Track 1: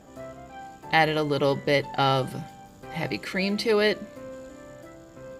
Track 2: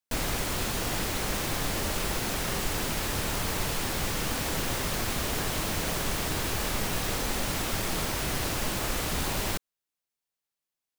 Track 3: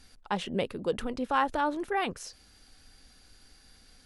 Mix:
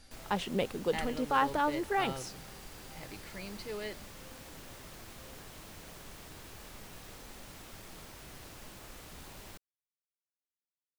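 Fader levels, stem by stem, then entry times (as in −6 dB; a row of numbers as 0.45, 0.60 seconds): −18.5, −19.5, −1.5 decibels; 0.00, 0.00, 0.00 seconds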